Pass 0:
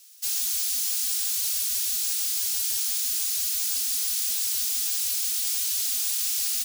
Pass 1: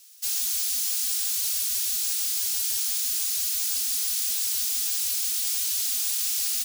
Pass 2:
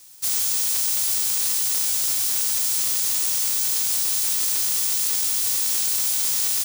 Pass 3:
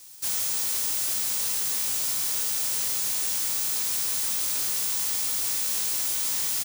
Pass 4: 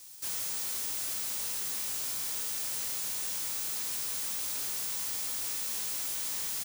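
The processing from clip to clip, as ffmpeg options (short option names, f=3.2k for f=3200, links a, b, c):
-af "lowshelf=f=280:g=10"
-af "equalizer=f=1.4k:w=0.43:g=-7,aeval=exprs='val(0)*sgn(sin(2*PI*380*n/s))':c=same,volume=5dB"
-filter_complex "[0:a]asoftclip=type=tanh:threshold=-24dB,asplit=2[a][b];[b]adelay=23,volume=-11dB[c];[a][c]amix=inputs=2:normalize=0"
-af "asoftclip=type=tanh:threshold=-30dB,volume=-2.5dB"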